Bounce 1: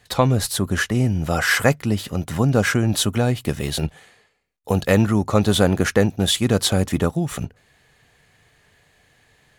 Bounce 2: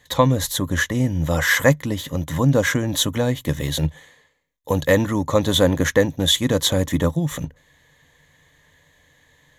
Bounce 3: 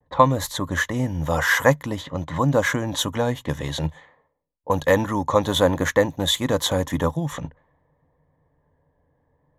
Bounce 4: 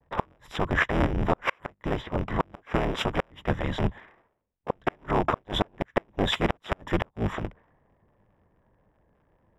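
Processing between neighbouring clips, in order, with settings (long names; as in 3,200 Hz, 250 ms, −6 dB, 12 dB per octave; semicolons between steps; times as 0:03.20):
EQ curve with evenly spaced ripples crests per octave 1.1, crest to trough 10 dB; level −1 dB
low-pass that shuts in the quiet parts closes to 490 Hz, open at −18 dBFS; pitch vibrato 0.53 Hz 36 cents; parametric band 930 Hz +9.5 dB 1.3 octaves; level −4.5 dB
sub-harmonics by changed cycles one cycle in 3, inverted; Savitzky-Golay smoothing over 25 samples; gate with flip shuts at −11 dBFS, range −39 dB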